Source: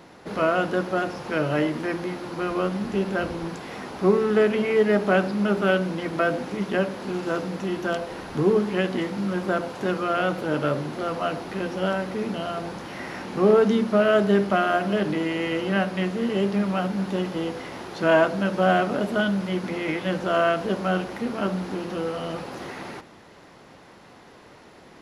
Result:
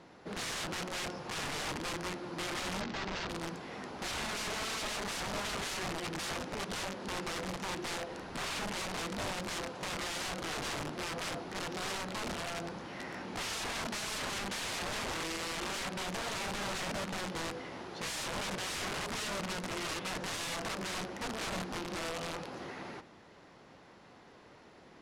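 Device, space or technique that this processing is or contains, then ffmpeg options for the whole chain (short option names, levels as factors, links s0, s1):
overflowing digital effects unit: -filter_complex "[0:a]aeval=exprs='(mod(15.8*val(0)+1,2)-1)/15.8':c=same,lowpass=8600,asettb=1/sr,asplit=3[s0][s1][s2];[s0]atrim=end=2.814[s3];[s1]atrim=start=2.81:end=3.29,asetpts=PTS-STARTPTS,afade=t=in:d=0.004:c=qsin,afade=t=out:st=0.476:d=0.004:c=qsin,lowpass=f=5600:w=0.5412,lowpass=f=5600:w=1.3066[s4];[s2]atrim=start=3.286[s5];[s3][s4]acrossfade=d=0.004:c1=hsin:c2=qsin[s6];[s6][s5]acrossfade=d=0.004:c1=qsin:c2=hsin,volume=0.398"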